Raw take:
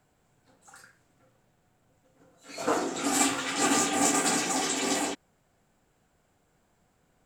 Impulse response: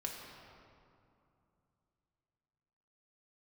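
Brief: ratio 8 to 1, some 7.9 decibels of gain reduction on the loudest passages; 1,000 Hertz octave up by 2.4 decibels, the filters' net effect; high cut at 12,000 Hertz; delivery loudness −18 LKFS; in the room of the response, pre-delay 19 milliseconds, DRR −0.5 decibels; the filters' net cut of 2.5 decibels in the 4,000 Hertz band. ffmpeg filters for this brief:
-filter_complex "[0:a]lowpass=12000,equalizer=frequency=1000:width_type=o:gain=3.5,equalizer=frequency=4000:width_type=o:gain=-3.5,acompressor=threshold=-28dB:ratio=8,asplit=2[link_01][link_02];[1:a]atrim=start_sample=2205,adelay=19[link_03];[link_02][link_03]afir=irnorm=-1:irlink=0,volume=0dB[link_04];[link_01][link_04]amix=inputs=2:normalize=0,volume=11dB"

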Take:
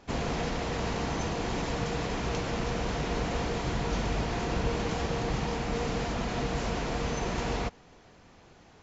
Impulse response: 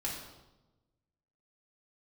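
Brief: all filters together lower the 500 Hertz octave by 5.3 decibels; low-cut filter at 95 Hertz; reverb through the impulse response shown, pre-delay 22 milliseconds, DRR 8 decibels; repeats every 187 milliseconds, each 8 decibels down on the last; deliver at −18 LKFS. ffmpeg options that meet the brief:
-filter_complex "[0:a]highpass=95,equalizer=frequency=500:width_type=o:gain=-6.5,aecho=1:1:187|374|561|748|935:0.398|0.159|0.0637|0.0255|0.0102,asplit=2[link_01][link_02];[1:a]atrim=start_sample=2205,adelay=22[link_03];[link_02][link_03]afir=irnorm=-1:irlink=0,volume=-10.5dB[link_04];[link_01][link_04]amix=inputs=2:normalize=0,volume=14.5dB"

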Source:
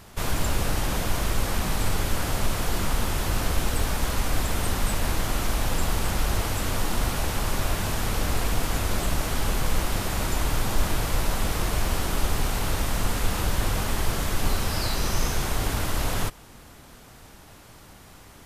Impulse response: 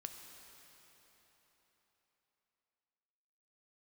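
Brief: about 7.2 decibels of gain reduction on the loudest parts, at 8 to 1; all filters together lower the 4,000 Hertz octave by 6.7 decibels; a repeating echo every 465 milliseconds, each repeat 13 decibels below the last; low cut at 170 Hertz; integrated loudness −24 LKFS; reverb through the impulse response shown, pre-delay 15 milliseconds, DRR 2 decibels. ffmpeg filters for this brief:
-filter_complex "[0:a]highpass=170,equalizer=frequency=4000:width_type=o:gain=-9,acompressor=threshold=-35dB:ratio=8,aecho=1:1:465|930|1395:0.224|0.0493|0.0108,asplit=2[link_01][link_02];[1:a]atrim=start_sample=2205,adelay=15[link_03];[link_02][link_03]afir=irnorm=-1:irlink=0,volume=1.5dB[link_04];[link_01][link_04]amix=inputs=2:normalize=0,volume=11.5dB"

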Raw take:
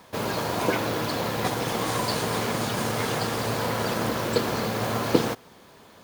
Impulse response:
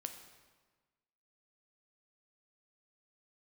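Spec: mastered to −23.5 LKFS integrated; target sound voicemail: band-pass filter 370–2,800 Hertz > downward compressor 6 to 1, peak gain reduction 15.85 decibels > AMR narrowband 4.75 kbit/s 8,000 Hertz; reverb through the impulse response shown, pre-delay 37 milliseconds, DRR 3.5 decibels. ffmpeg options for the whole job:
-filter_complex "[0:a]asplit=2[link_01][link_02];[1:a]atrim=start_sample=2205,adelay=37[link_03];[link_02][link_03]afir=irnorm=-1:irlink=0,volume=-1dB[link_04];[link_01][link_04]amix=inputs=2:normalize=0,highpass=370,lowpass=2800,acompressor=threshold=-33dB:ratio=6,volume=17.5dB" -ar 8000 -c:a libopencore_amrnb -b:a 4750

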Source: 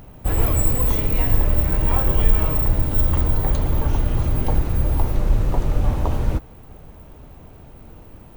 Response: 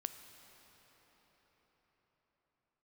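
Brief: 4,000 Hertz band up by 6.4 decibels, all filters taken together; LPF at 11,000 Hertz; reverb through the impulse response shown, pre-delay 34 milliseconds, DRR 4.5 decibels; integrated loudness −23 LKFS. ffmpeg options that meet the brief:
-filter_complex "[0:a]lowpass=11000,equalizer=frequency=4000:width_type=o:gain=8.5,asplit=2[link_01][link_02];[1:a]atrim=start_sample=2205,adelay=34[link_03];[link_02][link_03]afir=irnorm=-1:irlink=0,volume=-2.5dB[link_04];[link_01][link_04]amix=inputs=2:normalize=0,volume=-1.5dB"

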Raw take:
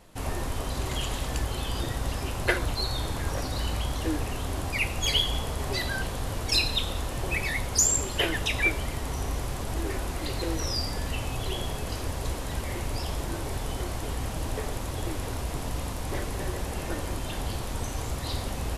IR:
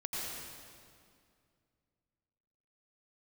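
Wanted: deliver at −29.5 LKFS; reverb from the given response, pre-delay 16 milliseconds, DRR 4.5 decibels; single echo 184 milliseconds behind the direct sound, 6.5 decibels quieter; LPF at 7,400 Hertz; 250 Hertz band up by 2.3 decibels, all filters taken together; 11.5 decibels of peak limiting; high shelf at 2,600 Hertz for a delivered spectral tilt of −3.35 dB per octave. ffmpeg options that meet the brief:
-filter_complex "[0:a]lowpass=7400,equalizer=frequency=250:width_type=o:gain=3,highshelf=frequency=2600:gain=7.5,alimiter=limit=-16.5dB:level=0:latency=1,aecho=1:1:184:0.473,asplit=2[link_01][link_02];[1:a]atrim=start_sample=2205,adelay=16[link_03];[link_02][link_03]afir=irnorm=-1:irlink=0,volume=-7.5dB[link_04];[link_01][link_04]amix=inputs=2:normalize=0,volume=-3dB"

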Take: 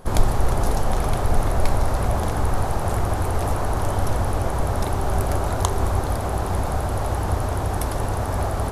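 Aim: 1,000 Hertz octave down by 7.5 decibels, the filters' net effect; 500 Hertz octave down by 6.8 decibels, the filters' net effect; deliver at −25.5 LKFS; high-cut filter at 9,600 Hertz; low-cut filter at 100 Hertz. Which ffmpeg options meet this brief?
ffmpeg -i in.wav -af "highpass=100,lowpass=9600,equalizer=frequency=500:width_type=o:gain=-6.5,equalizer=frequency=1000:width_type=o:gain=-7.5,volume=4dB" out.wav

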